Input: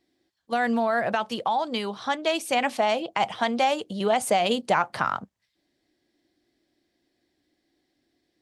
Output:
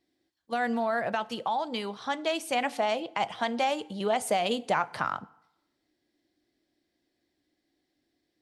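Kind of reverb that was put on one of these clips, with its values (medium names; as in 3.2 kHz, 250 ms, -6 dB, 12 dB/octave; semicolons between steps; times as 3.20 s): FDN reverb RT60 0.83 s, low-frequency decay 0.9×, high-frequency decay 0.75×, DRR 17.5 dB; trim -4.5 dB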